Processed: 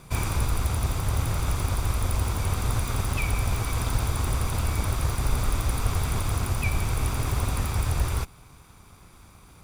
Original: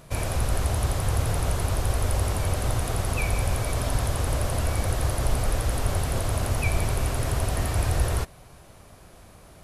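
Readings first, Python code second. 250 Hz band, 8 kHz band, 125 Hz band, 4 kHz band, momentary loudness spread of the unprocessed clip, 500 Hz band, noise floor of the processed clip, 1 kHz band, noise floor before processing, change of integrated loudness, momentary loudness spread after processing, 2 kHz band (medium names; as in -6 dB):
-0.5 dB, -1.5 dB, -0.5 dB, -0.5 dB, 2 LU, -6.0 dB, -51 dBFS, -1.0 dB, -50 dBFS, -0.5 dB, 1 LU, -1.0 dB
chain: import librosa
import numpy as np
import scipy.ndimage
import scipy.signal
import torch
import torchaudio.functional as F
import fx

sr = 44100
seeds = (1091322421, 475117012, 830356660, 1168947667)

y = fx.lower_of_two(x, sr, delay_ms=0.83)
y = fx.rider(y, sr, range_db=10, speed_s=0.5)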